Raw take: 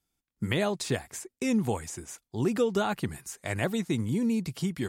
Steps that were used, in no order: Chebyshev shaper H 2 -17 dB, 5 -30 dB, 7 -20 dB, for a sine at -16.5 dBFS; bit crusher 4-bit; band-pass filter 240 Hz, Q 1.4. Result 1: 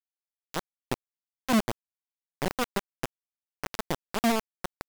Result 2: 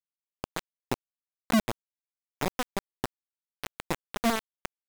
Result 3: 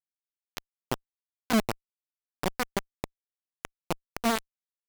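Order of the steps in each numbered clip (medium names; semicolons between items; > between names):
band-pass filter > Chebyshev shaper > bit crusher; Chebyshev shaper > band-pass filter > bit crusher; band-pass filter > bit crusher > Chebyshev shaper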